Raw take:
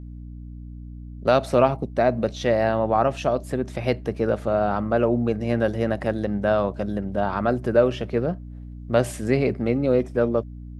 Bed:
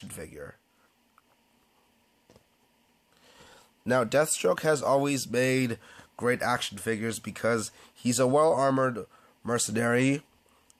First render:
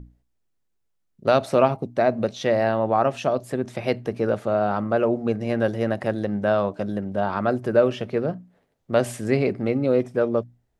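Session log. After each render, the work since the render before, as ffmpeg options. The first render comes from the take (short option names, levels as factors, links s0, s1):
-af "bandreject=f=60:t=h:w=6,bandreject=f=120:t=h:w=6,bandreject=f=180:t=h:w=6,bandreject=f=240:t=h:w=6,bandreject=f=300:t=h:w=6"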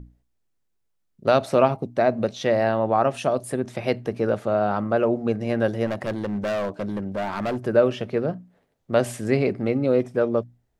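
-filter_complex "[0:a]asettb=1/sr,asplit=3[s0][s1][s2];[s0]atrim=end=3.144[s3];[s1]atrim=start=3.14:end=3.6,asetpts=PTS-STARTPTS,afade=t=in:d=0.004:c=qsin,afade=t=out:st=0.456:d=0.004:c=qsin,equalizer=f=9500:w=3.6:g=14.5[s4];[s2]atrim=start=3.596[s5];[s3][s4]acrossfade=d=0.004:c1=hsin:c2=qsin[s6];[s6][s5]acrossfade=d=0.004:c1=qsin:c2=hsin,asplit=3[s7][s8][s9];[s7]afade=t=out:st=5.85:d=0.02[s10];[s8]asoftclip=type=hard:threshold=0.075,afade=t=in:st=5.85:d=0.02,afade=t=out:st=7.59:d=0.02[s11];[s9]afade=t=in:st=7.59:d=0.02[s12];[s10][s11][s12]amix=inputs=3:normalize=0"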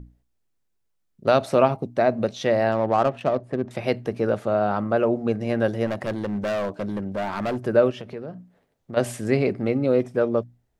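-filter_complex "[0:a]asettb=1/sr,asplit=3[s0][s1][s2];[s0]atrim=end=2.724[s3];[s1]atrim=start=2.72:end=3.71,asetpts=PTS-STARTPTS,afade=t=in:d=0.004:c=qsin,afade=t=out:st=0.986:d=0.004:c=qsin,adynamicsmooth=sensitivity=2:basefreq=1300[s4];[s2]atrim=start=3.706[s5];[s3][s4]acrossfade=d=0.004:c1=hsin:c2=qsin[s6];[s6][s5]acrossfade=d=0.004:c1=qsin:c2=hsin,asplit=3[s7][s8][s9];[s7]afade=t=out:st=7.9:d=0.02[s10];[s8]acompressor=threshold=0.0224:ratio=3:attack=3.2:release=140:knee=1:detection=peak,afade=t=in:st=7.9:d=0.02,afade=t=out:st=8.96:d=0.02[s11];[s9]afade=t=in:st=8.96:d=0.02[s12];[s10][s11][s12]amix=inputs=3:normalize=0"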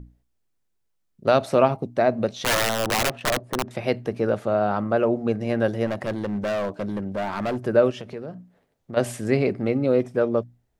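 -filter_complex "[0:a]asettb=1/sr,asplit=3[s0][s1][s2];[s0]atrim=end=2.444[s3];[s1]atrim=start=2.44:end=3.68,asetpts=PTS-STARTPTS,afade=t=in:d=0.004:c=qsin,afade=t=out:st=1.236:d=0.004:c=qsin,aeval=exprs='(mod(6.31*val(0)+1,2)-1)/6.31':c=same[s4];[s2]atrim=start=3.676[s5];[s3][s4]acrossfade=d=0.004:c1=hsin:c2=qsin[s6];[s6][s5]acrossfade=d=0.004:c1=qsin:c2=hsin,asettb=1/sr,asplit=3[s7][s8][s9];[s7]atrim=end=7.844[s10];[s8]atrim=start=7.84:end=8.35,asetpts=PTS-STARTPTS,afade=t=in:d=0.004:c=qsin,afade=t=out:st=0.506:d=0.004:c=qsin,equalizer=f=7300:t=o:w=1.2:g=5.5[s11];[s9]atrim=start=8.346[s12];[s10][s11]acrossfade=d=0.004:c1=hsin:c2=qsin[s13];[s13][s12]acrossfade=d=0.004:c1=qsin:c2=hsin"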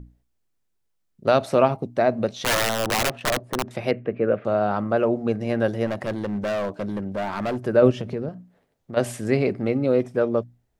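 -filter_complex "[0:a]asettb=1/sr,asplit=3[s0][s1][s2];[s0]atrim=end=3.914[s3];[s1]atrim=start=3.91:end=4.45,asetpts=PTS-STARTPTS,afade=t=in:d=0.004:c=qsin,afade=t=out:st=0.536:d=0.004:c=qsin,highpass=110,equalizer=f=510:t=q:w=4:g=4,equalizer=f=870:t=q:w=4:g=-10,equalizer=f=2500:t=q:w=4:g=4,lowpass=f=2500:w=0.5412,lowpass=f=2500:w=1.3066[s4];[s2]atrim=start=4.446[s5];[s3][s4]acrossfade=d=0.004:c1=hsin:c2=qsin[s6];[s6][s5]acrossfade=d=0.004:c1=qsin:c2=hsin,asettb=1/sr,asplit=3[s7][s8][s9];[s7]atrim=end=7.824[s10];[s8]atrim=start=7.82:end=8.29,asetpts=PTS-STARTPTS,afade=t=in:d=0.004:c=qsin,afade=t=out:st=0.466:d=0.004:c=qsin,lowshelf=f=400:g=10.5[s11];[s9]atrim=start=8.286[s12];[s10][s11]acrossfade=d=0.004:c1=hsin:c2=qsin[s13];[s13][s12]acrossfade=d=0.004:c1=qsin:c2=hsin"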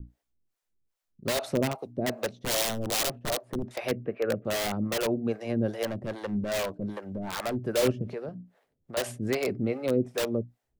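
-filter_complex "[0:a]acrossover=split=430[s0][s1];[s0]aeval=exprs='val(0)*(1-1/2+1/2*cos(2*PI*2.5*n/s))':c=same[s2];[s1]aeval=exprs='val(0)*(1-1/2-1/2*cos(2*PI*2.5*n/s))':c=same[s3];[s2][s3]amix=inputs=2:normalize=0,acrossover=split=540|2900[s4][s5][s6];[s5]aeval=exprs='(mod(21.1*val(0)+1,2)-1)/21.1':c=same[s7];[s4][s7][s6]amix=inputs=3:normalize=0"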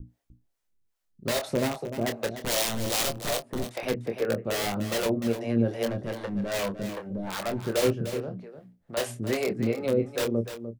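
-filter_complex "[0:a]asplit=2[s0][s1];[s1]adelay=26,volume=0.447[s2];[s0][s2]amix=inputs=2:normalize=0,asplit=2[s3][s4];[s4]aecho=0:1:299:0.299[s5];[s3][s5]amix=inputs=2:normalize=0"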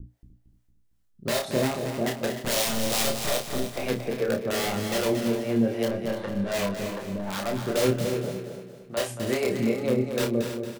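-filter_complex "[0:a]asplit=2[s0][s1];[s1]adelay=31,volume=0.531[s2];[s0][s2]amix=inputs=2:normalize=0,aecho=1:1:228|456|684|912|1140:0.398|0.163|0.0669|0.0274|0.0112"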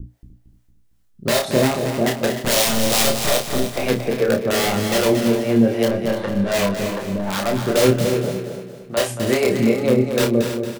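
-af "volume=2.51"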